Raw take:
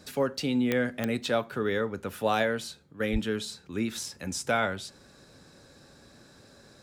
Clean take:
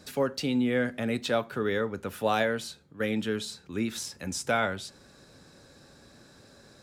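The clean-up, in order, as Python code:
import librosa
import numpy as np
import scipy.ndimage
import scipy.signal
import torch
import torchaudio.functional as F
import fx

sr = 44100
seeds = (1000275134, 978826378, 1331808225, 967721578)

y = fx.fix_declick_ar(x, sr, threshold=10.0)
y = fx.highpass(y, sr, hz=140.0, slope=24, at=(3.12, 3.24), fade=0.02)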